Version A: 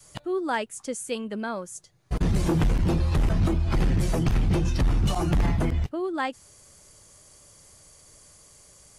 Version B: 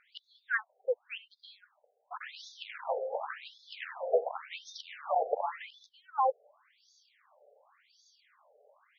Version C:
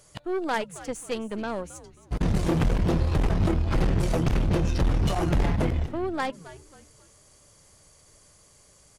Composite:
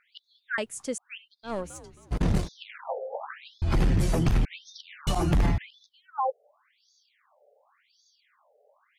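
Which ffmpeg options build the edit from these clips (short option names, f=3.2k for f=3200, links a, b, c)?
-filter_complex "[0:a]asplit=3[a][b][c];[1:a]asplit=5[d][e][f][g][h];[d]atrim=end=0.582[i];[a]atrim=start=0.578:end=0.982[j];[e]atrim=start=0.978:end=1.53[k];[2:a]atrim=start=1.43:end=2.49[l];[f]atrim=start=2.39:end=3.622[m];[b]atrim=start=3.618:end=4.452[n];[g]atrim=start=4.448:end=5.072[o];[c]atrim=start=5.068:end=5.582[p];[h]atrim=start=5.578[q];[i][j]acrossfade=d=0.004:c1=hsin:c2=hsin[r];[r][k]acrossfade=d=0.004:c1=hsin:c2=hsin[s];[s][l]acrossfade=d=0.1:c1=tri:c2=tri[t];[t][m]acrossfade=d=0.1:c1=tri:c2=tri[u];[u][n]acrossfade=d=0.004:c1=hsin:c2=hsin[v];[v][o]acrossfade=d=0.004:c1=hsin:c2=hsin[w];[w][p]acrossfade=d=0.004:c1=hsin:c2=hsin[x];[x][q]acrossfade=d=0.004:c1=hsin:c2=hsin"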